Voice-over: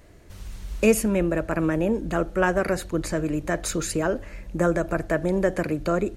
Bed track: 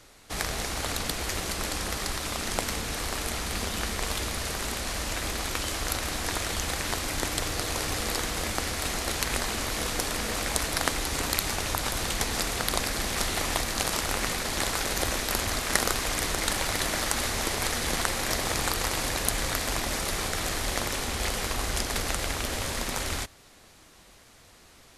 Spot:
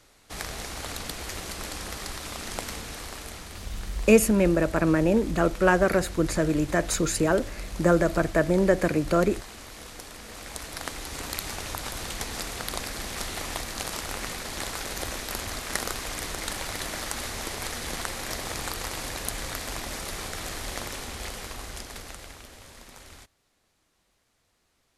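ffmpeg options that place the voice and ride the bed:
-filter_complex "[0:a]adelay=3250,volume=1.19[s0];[1:a]volume=1.5,afade=t=out:st=2.71:d=0.97:silence=0.375837,afade=t=in:st=10.21:d=1.28:silence=0.398107,afade=t=out:st=20.83:d=1.7:silence=0.251189[s1];[s0][s1]amix=inputs=2:normalize=0"

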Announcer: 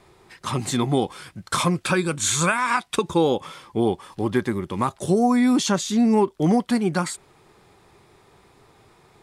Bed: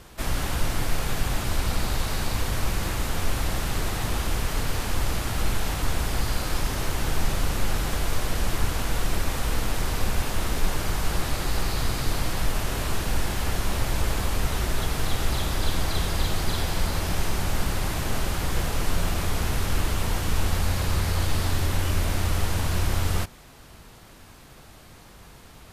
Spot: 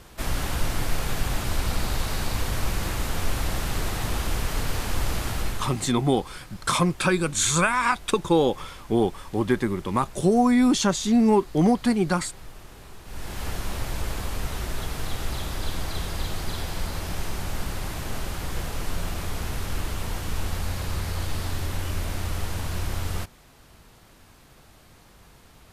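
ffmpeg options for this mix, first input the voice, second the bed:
-filter_complex "[0:a]adelay=5150,volume=0.944[s0];[1:a]volume=4.73,afade=t=out:st=5.29:d=0.55:silence=0.125893,afade=t=in:st=13.04:d=0.41:silence=0.199526[s1];[s0][s1]amix=inputs=2:normalize=0"

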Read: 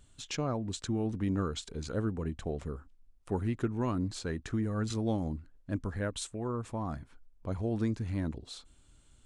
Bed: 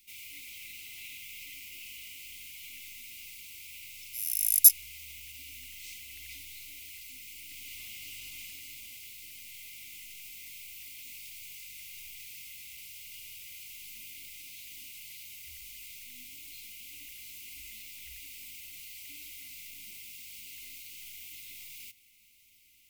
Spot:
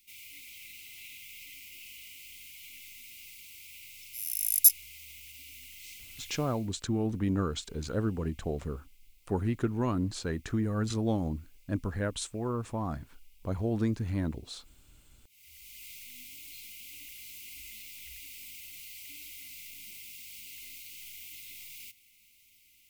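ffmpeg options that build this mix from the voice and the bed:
-filter_complex "[0:a]adelay=6000,volume=1.26[s0];[1:a]volume=8.41,afade=t=out:st=6.29:d=0.43:silence=0.11885,afade=t=in:st=15.29:d=0.6:silence=0.0891251[s1];[s0][s1]amix=inputs=2:normalize=0"

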